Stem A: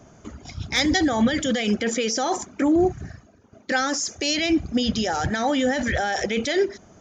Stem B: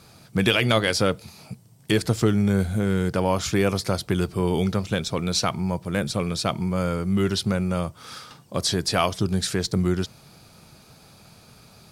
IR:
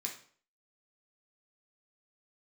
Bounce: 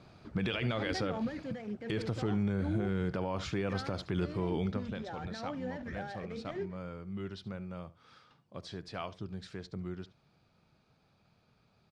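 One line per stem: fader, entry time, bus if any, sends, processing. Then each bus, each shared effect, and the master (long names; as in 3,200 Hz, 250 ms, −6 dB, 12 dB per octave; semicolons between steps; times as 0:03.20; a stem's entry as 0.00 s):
−10.5 dB, 0.00 s, no send, no echo send, running median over 15 samples; automatic ducking −7 dB, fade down 1.80 s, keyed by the second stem
0:04.56 −7 dB → 0:05.02 −18 dB, 0.00 s, no send, echo send −18.5 dB, no processing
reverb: not used
echo: single-tap delay 72 ms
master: low-pass filter 3,400 Hz 12 dB per octave; brickwall limiter −23 dBFS, peak gain reduction 9.5 dB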